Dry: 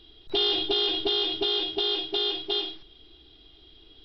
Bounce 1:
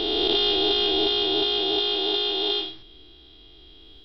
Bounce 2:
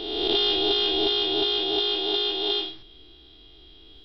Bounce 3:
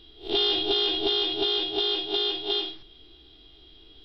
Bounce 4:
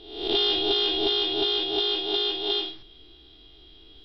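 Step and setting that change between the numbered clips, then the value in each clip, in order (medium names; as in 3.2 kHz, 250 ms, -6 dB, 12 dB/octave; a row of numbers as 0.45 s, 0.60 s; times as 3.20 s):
reverse spectral sustain, rising 60 dB in: 3.2 s, 1.48 s, 0.31 s, 0.71 s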